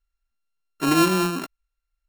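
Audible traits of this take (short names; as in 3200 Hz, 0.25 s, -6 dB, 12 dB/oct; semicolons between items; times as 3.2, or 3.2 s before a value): a buzz of ramps at a fixed pitch in blocks of 32 samples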